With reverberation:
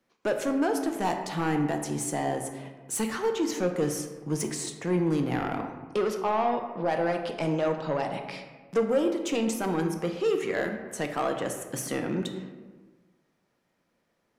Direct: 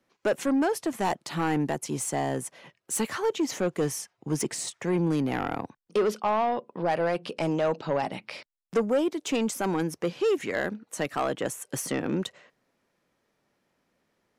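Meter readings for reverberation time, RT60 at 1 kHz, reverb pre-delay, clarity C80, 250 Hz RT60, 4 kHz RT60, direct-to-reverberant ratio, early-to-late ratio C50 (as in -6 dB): 1.4 s, 1.3 s, 4 ms, 8.5 dB, 1.5 s, 0.75 s, 4.5 dB, 7.0 dB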